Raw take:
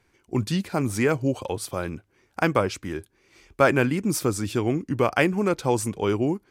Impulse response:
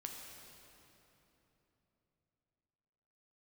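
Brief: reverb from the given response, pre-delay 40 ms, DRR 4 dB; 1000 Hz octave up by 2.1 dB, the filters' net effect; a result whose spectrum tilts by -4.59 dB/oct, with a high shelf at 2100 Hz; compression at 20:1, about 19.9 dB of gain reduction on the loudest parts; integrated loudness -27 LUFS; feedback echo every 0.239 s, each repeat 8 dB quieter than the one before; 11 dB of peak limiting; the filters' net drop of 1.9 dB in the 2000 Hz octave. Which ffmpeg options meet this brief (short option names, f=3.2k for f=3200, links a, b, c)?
-filter_complex "[0:a]equalizer=f=1k:t=o:g=3.5,equalizer=f=2k:t=o:g=-9,highshelf=f=2.1k:g=8.5,acompressor=threshold=-32dB:ratio=20,alimiter=level_in=4dB:limit=-24dB:level=0:latency=1,volume=-4dB,aecho=1:1:239|478|717|956|1195:0.398|0.159|0.0637|0.0255|0.0102,asplit=2[a][b];[1:a]atrim=start_sample=2205,adelay=40[c];[b][c]afir=irnorm=-1:irlink=0,volume=-1.5dB[d];[a][d]amix=inputs=2:normalize=0,volume=10.5dB"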